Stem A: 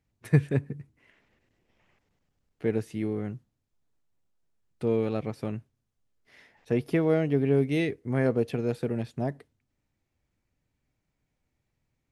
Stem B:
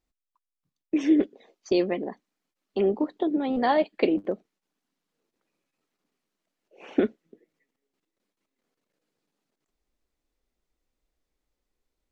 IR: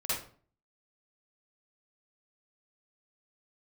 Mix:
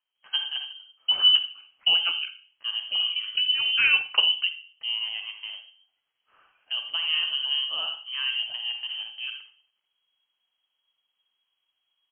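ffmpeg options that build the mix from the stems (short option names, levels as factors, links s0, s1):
-filter_complex "[0:a]highpass=170,bandreject=f=1900:w=18,volume=0.531,asplit=3[s0][s1][s2];[s1]volume=0.355[s3];[1:a]adelay=150,volume=1.06,asplit=2[s4][s5];[s5]volume=0.158[s6];[s2]apad=whole_len=541046[s7];[s4][s7]sidechaincompress=threshold=0.01:ratio=8:attack=11:release=296[s8];[2:a]atrim=start_sample=2205[s9];[s3][s6]amix=inputs=2:normalize=0[s10];[s10][s9]afir=irnorm=-1:irlink=0[s11];[s0][s8][s11]amix=inputs=3:normalize=0,lowpass=f=2800:t=q:w=0.5098,lowpass=f=2800:t=q:w=0.6013,lowpass=f=2800:t=q:w=0.9,lowpass=f=2800:t=q:w=2.563,afreqshift=-3300"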